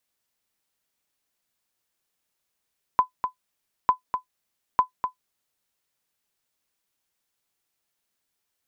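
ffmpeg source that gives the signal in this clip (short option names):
-f lavfi -i "aevalsrc='0.376*(sin(2*PI*1010*mod(t,0.9))*exp(-6.91*mod(t,0.9)/0.11)+0.422*sin(2*PI*1010*max(mod(t,0.9)-0.25,0))*exp(-6.91*max(mod(t,0.9)-0.25,0)/0.11))':d=2.7:s=44100"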